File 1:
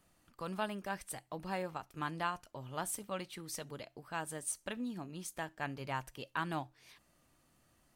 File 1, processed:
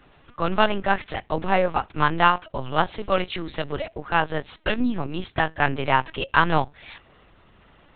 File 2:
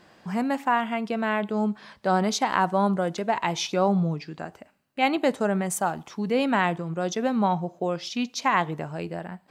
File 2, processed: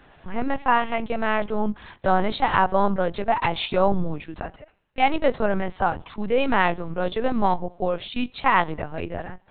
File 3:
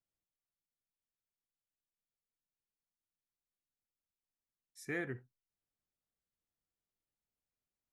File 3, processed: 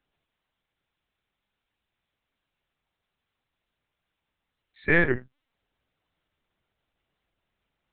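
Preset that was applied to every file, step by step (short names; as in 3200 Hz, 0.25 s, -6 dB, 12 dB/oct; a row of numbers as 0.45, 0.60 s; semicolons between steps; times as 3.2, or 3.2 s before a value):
low shelf 190 Hz -5 dB; LPC vocoder at 8 kHz pitch kept; match loudness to -24 LUFS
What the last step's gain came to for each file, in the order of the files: +19.5, +4.0, +19.0 dB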